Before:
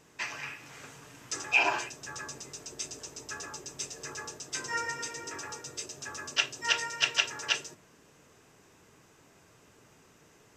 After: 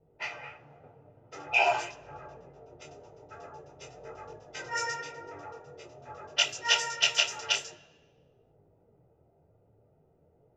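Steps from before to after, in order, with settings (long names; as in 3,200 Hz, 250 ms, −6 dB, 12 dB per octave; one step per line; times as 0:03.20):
low-pass that shuts in the quiet parts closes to 380 Hz, open at −27 dBFS
0:00.76–0:02.82: high-shelf EQ 4,400 Hz −10.5 dB
convolution reverb RT60 1.1 s, pre-delay 3 ms, DRR 18 dB
micro pitch shift up and down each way 16 cents
level +5 dB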